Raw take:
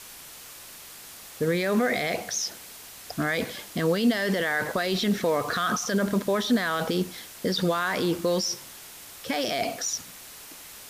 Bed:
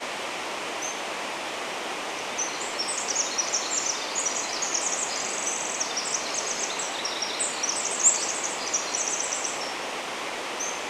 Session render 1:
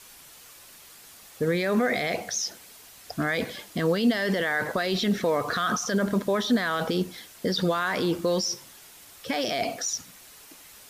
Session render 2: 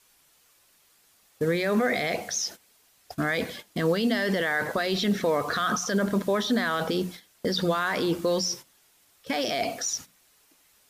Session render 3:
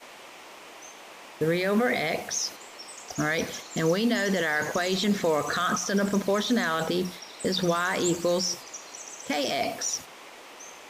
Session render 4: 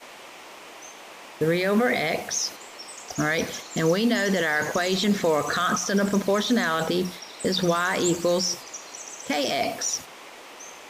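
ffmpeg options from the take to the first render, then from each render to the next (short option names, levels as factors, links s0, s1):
-af "afftdn=nr=6:nf=-45"
-af "bandreject=f=60:t=h:w=6,bandreject=f=120:t=h:w=6,bandreject=f=180:t=h:w=6,bandreject=f=240:t=h:w=6,agate=range=0.224:threshold=0.0126:ratio=16:detection=peak"
-filter_complex "[1:a]volume=0.2[s0];[0:a][s0]amix=inputs=2:normalize=0"
-af "volume=1.33"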